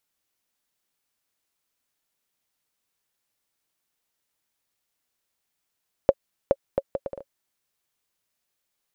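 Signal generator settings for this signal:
bouncing ball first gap 0.42 s, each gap 0.64, 550 Hz, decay 46 ms −3.5 dBFS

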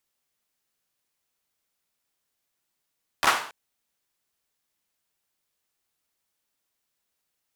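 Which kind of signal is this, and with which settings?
synth clap length 0.28 s, apart 13 ms, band 1,100 Hz, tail 0.48 s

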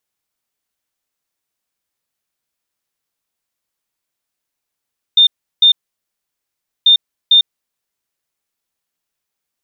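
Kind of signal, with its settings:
beeps in groups sine 3,620 Hz, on 0.10 s, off 0.35 s, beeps 2, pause 1.14 s, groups 2, −5 dBFS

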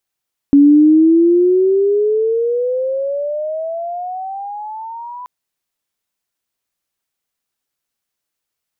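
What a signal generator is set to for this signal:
glide logarithmic 280 Hz → 1,000 Hz −4 dBFS → −27 dBFS 4.73 s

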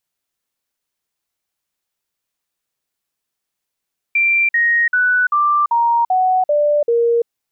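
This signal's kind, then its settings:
stepped sweep 2,360 Hz down, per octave 3, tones 8, 0.34 s, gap 0.05 s −11.5 dBFS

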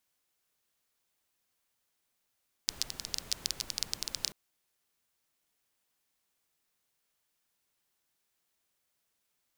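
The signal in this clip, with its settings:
rain-like ticks over hiss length 1.64 s, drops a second 14, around 4,900 Hz, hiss −12 dB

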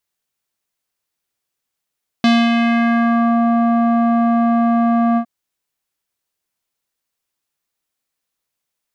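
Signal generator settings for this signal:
subtractive voice square A#3 12 dB per octave, low-pass 1,000 Hz, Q 1.9, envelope 2 octaves, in 1.14 s, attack 2 ms, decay 0.25 s, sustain −4 dB, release 0.08 s, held 2.93 s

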